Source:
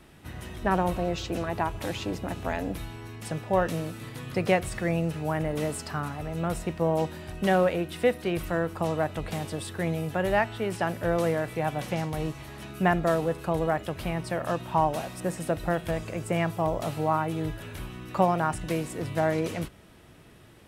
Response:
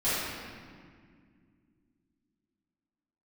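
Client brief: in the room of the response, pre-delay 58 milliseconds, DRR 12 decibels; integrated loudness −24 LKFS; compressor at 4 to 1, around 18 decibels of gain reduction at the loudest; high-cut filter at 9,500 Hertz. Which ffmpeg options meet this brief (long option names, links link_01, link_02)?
-filter_complex "[0:a]lowpass=9500,acompressor=threshold=-40dB:ratio=4,asplit=2[link_01][link_02];[1:a]atrim=start_sample=2205,adelay=58[link_03];[link_02][link_03]afir=irnorm=-1:irlink=0,volume=-24dB[link_04];[link_01][link_04]amix=inputs=2:normalize=0,volume=18dB"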